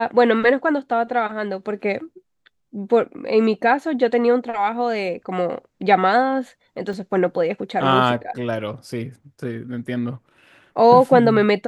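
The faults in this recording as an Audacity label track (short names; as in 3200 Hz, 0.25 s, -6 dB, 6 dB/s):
6.930000	6.930000	gap 2.2 ms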